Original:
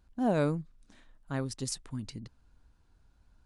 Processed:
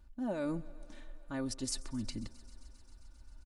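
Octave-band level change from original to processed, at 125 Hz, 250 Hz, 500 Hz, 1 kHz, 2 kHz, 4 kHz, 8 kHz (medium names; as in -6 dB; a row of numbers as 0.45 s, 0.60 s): -10.0 dB, -4.5 dB, -7.5 dB, -10.0 dB, -6.0 dB, -0.5 dB, -1.0 dB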